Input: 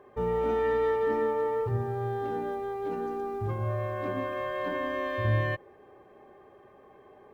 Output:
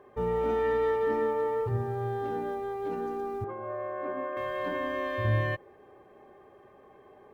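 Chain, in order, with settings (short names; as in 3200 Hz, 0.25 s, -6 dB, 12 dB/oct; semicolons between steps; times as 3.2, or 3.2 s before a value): 3.44–4.37 three-band isolator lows -23 dB, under 260 Hz, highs -22 dB, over 2100 Hz; MP3 96 kbps 48000 Hz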